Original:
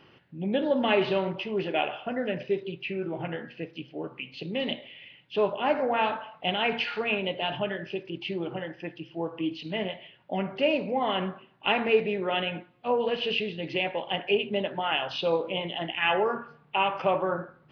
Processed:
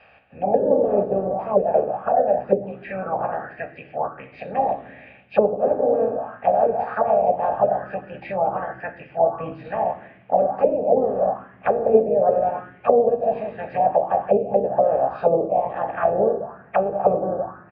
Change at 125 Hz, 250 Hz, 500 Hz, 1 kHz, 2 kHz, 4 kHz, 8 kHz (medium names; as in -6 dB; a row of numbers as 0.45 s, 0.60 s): +2.5 dB, +1.5 dB, +9.5 dB, +9.0 dB, -6.0 dB, under -25 dB, no reading